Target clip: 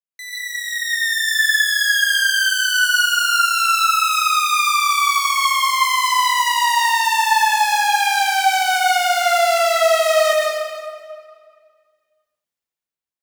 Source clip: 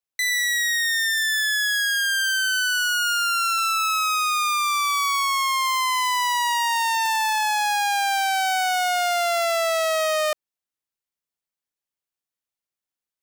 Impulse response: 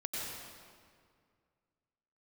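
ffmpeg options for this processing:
-filter_complex "[0:a]dynaudnorm=framelen=140:gausssize=13:maxgain=10.5dB[link_01];[1:a]atrim=start_sample=2205[link_02];[link_01][link_02]afir=irnorm=-1:irlink=0,volume=-7.5dB"

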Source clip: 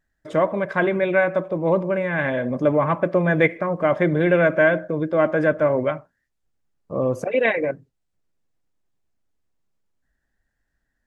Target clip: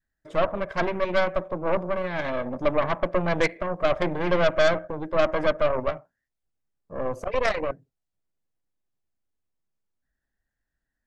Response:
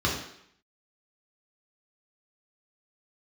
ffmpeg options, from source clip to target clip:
-af "adynamicequalizer=threshold=0.0251:dfrequency=680:dqfactor=2.6:tfrequency=680:tqfactor=2.6:attack=5:release=100:ratio=0.375:range=3:mode=boostabove:tftype=bell,aeval=exprs='0.708*(cos(1*acos(clip(val(0)/0.708,-1,1)))-cos(1*PI/2))+0.141*(cos(6*acos(clip(val(0)/0.708,-1,1)))-cos(6*PI/2))':channel_layout=same,volume=-8dB"

